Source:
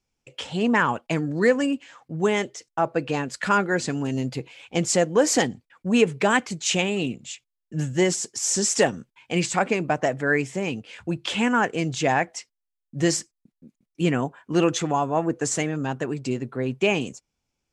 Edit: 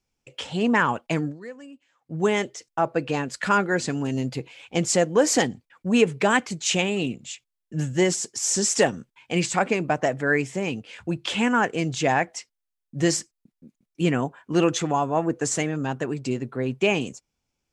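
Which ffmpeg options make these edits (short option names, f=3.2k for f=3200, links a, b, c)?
-filter_complex "[0:a]asplit=3[a][b][c];[a]atrim=end=1.4,asetpts=PTS-STARTPTS,afade=t=out:st=1.27:d=0.13:c=qua:silence=0.1[d];[b]atrim=start=1.4:end=2,asetpts=PTS-STARTPTS,volume=-20dB[e];[c]atrim=start=2,asetpts=PTS-STARTPTS,afade=t=in:d=0.13:c=qua:silence=0.1[f];[d][e][f]concat=n=3:v=0:a=1"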